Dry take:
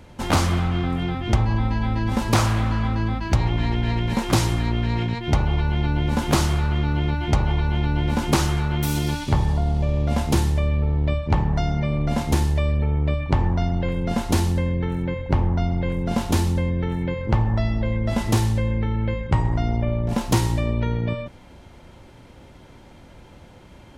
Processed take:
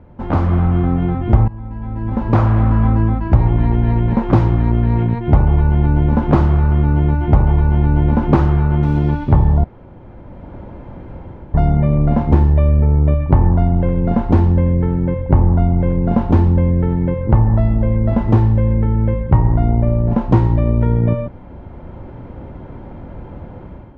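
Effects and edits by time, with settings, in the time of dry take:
1.48–3.29 s: fade in, from -19.5 dB
9.64–11.54 s: room tone
whole clip: bass shelf 350 Hz +3.5 dB; level rider; low-pass 1.2 kHz 12 dB/octave

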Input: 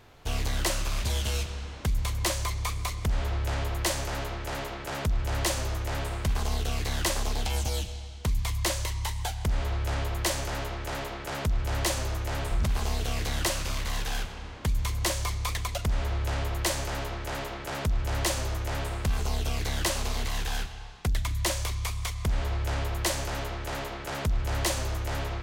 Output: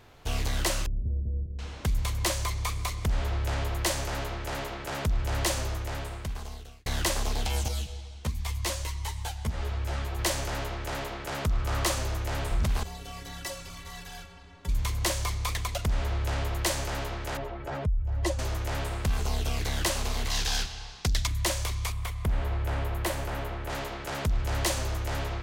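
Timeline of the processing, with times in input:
0.86–1.59 s: Gaussian low-pass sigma 24 samples
5.56–6.86 s: fade out
7.68–10.19 s: three-phase chorus
11.45–11.95 s: peaking EQ 1.2 kHz +7.5 dB 0.29 oct
12.83–14.69 s: inharmonic resonator 83 Hz, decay 0.31 s, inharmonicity 0.03
17.37–18.39 s: spectral contrast enhancement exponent 1.8
20.30–21.27 s: peaking EQ 5.1 kHz +11 dB 1.3 oct
21.92–23.70 s: peaking EQ 5.9 kHz -10 dB 1.6 oct

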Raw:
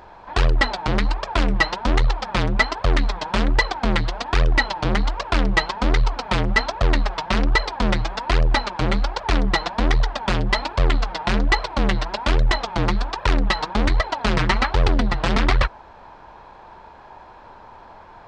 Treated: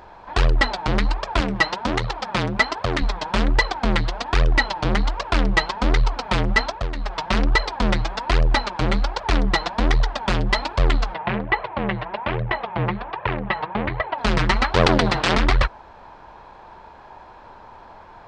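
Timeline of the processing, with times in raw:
1.40–3.02 s: high-pass 80 Hz
6.65–7.20 s: dip -11 dB, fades 0.25 s
11.14–14.18 s: cabinet simulation 100–2700 Hz, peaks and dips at 130 Hz +4 dB, 270 Hz -9 dB, 1.4 kHz -4 dB
14.74–15.35 s: spectral peaks clipped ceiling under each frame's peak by 19 dB

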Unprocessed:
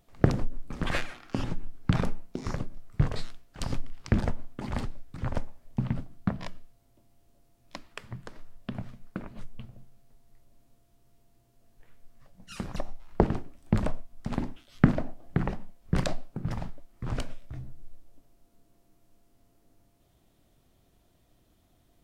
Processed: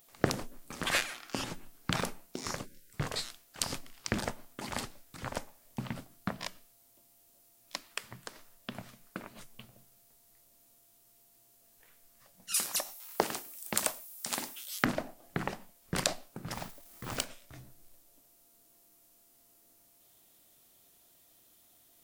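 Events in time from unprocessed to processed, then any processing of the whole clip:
2.65–2.93 s: spectral selection erased 580–1400 Hz
12.54–14.85 s: RIAA curve recording
16.55–17.25 s: companding laws mixed up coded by mu
whole clip: RIAA curve recording

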